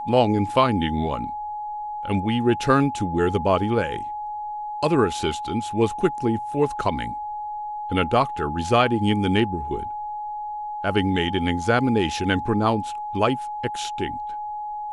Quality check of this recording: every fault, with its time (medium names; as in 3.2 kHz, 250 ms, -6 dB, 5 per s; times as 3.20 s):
whine 840 Hz -28 dBFS